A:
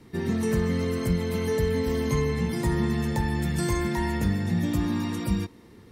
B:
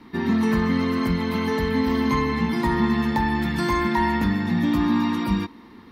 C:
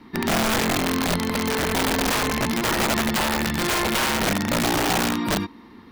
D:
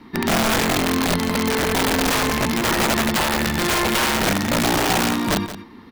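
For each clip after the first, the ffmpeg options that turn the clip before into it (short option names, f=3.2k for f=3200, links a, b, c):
-af "equalizer=f=125:t=o:w=1:g=-8,equalizer=f=250:t=o:w=1:g=11,equalizer=f=500:t=o:w=1:g=-6,equalizer=f=1k:t=o:w=1:g=12,equalizer=f=2k:t=o:w=1:g=4,equalizer=f=4k:t=o:w=1:g=7,equalizer=f=8k:t=o:w=1:g=-11"
-af "aeval=exprs='(mod(6.68*val(0)+1,2)-1)/6.68':c=same"
-af "aecho=1:1:175:0.224,volume=2.5dB"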